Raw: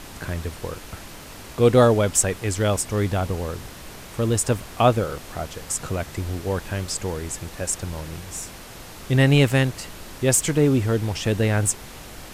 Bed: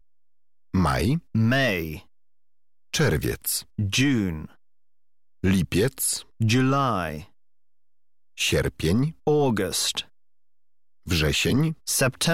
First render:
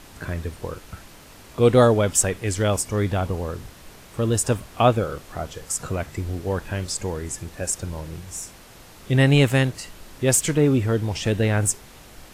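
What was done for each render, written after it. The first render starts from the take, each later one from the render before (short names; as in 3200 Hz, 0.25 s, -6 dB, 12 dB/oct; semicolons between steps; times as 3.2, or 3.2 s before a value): noise print and reduce 6 dB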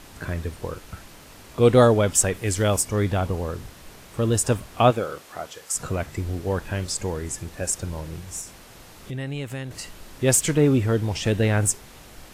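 2.34–2.85 high shelf 10000 Hz +7 dB; 4.9–5.74 HPF 270 Hz -> 900 Hz 6 dB/oct; 8.41–9.71 compressor 2.5:1, threshold -34 dBFS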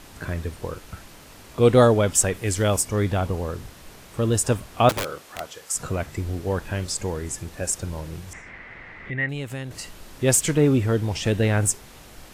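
4.89–5.4 wrapped overs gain 20.5 dB; 8.33–9.29 synth low-pass 2000 Hz, resonance Q 8.4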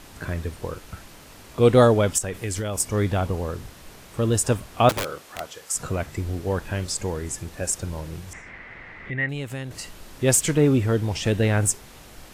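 2.18–2.8 compressor 12:1, threshold -23 dBFS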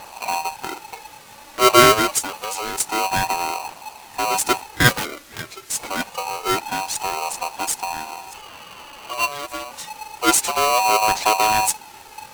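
phaser 0.27 Hz, delay 4.3 ms, feedback 58%; polarity switched at an audio rate 860 Hz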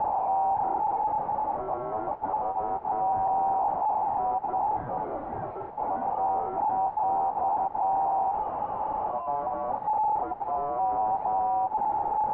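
infinite clipping; ladder low-pass 870 Hz, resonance 70%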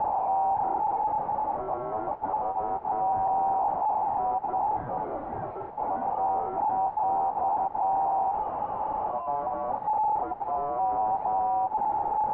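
nothing audible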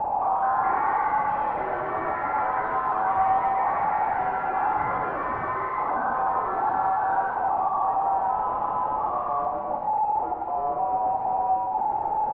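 echoes that change speed 0.212 s, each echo +5 st, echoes 3, each echo -6 dB; on a send: tapped delay 60/112/137/183 ms -10.5/-7.5/-7.5/-12.5 dB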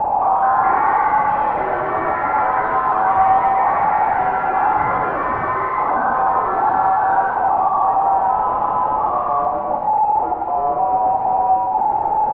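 gain +8 dB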